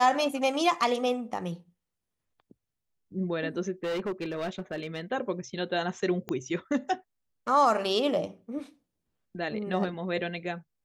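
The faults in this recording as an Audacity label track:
3.830000	5.010000	clipped -28 dBFS
6.290000	6.290000	pop -20 dBFS

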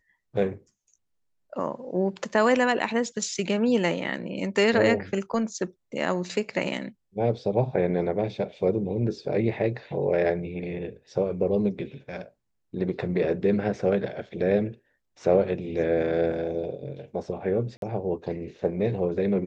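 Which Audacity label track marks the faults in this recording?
17.770000	17.820000	dropout 52 ms

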